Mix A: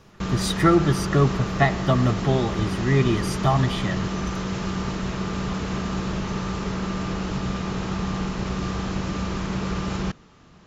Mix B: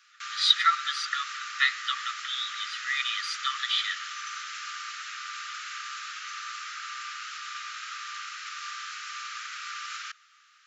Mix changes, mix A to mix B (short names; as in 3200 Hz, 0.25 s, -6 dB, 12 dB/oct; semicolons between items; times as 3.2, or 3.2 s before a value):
speech: add synth low-pass 3900 Hz, resonance Q 3.9; master: add Chebyshev high-pass 1200 Hz, order 8